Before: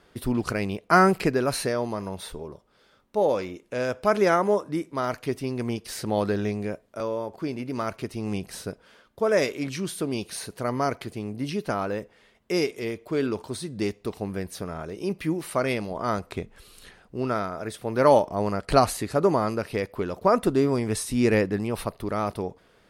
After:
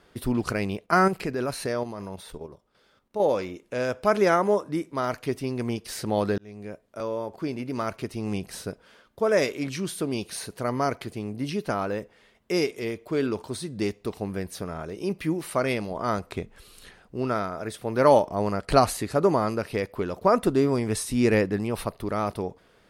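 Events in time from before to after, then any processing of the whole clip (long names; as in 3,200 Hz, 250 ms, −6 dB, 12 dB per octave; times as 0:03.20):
0:00.83–0:03.20: output level in coarse steps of 9 dB
0:06.38–0:07.44: fade in equal-power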